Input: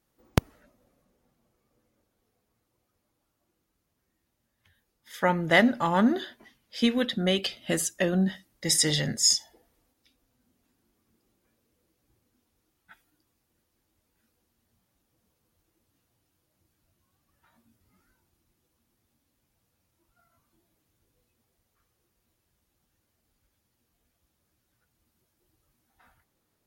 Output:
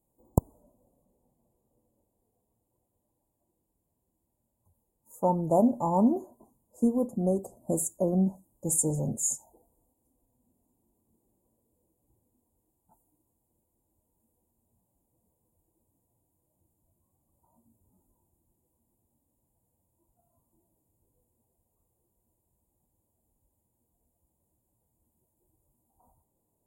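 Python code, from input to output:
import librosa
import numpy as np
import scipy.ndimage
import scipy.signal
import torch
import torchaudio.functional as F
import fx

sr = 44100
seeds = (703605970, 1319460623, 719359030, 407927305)

y = scipy.signal.sosfilt(scipy.signal.cheby1(5, 1.0, [1000.0, 7100.0], 'bandstop', fs=sr, output='sos'), x)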